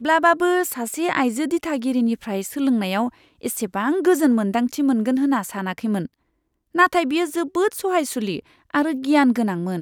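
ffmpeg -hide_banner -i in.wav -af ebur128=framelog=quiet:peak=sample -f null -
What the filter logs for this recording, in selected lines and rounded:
Integrated loudness:
  I:         -21.0 LUFS
  Threshold: -31.1 LUFS
Loudness range:
  LRA:         1.9 LU
  Threshold: -41.6 LUFS
  LRA low:   -22.6 LUFS
  LRA high:  -20.7 LUFS
Sample peak:
  Peak:       -3.5 dBFS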